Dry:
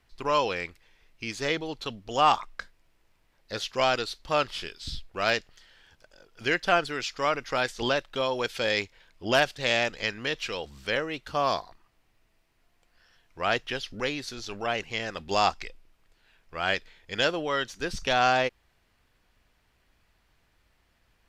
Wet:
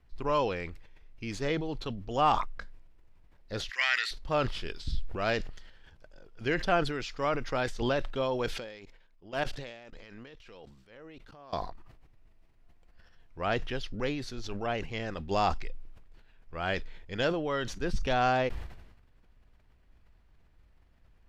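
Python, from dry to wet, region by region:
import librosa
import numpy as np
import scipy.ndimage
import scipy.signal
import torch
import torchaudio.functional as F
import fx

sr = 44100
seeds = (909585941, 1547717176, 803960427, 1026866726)

y = fx.chain(x, sr, fx.highpass_res(hz=1900.0, q=13.0),
    fx.high_shelf(hz=5100.0, db=8.0), at=(3.69, 4.11))
y = fx.chain(y, sr, fx.peak_eq(hz=63.0, db=-13.0, octaves=1.7),
    fx.level_steps(step_db=23),
    fx.transient(attack_db=-9, sustain_db=0), at=(8.53, 11.53))
y = fx.tilt_eq(y, sr, slope=-2.5)
y = fx.sustainer(y, sr, db_per_s=58.0)
y = y * librosa.db_to_amplitude(-4.5)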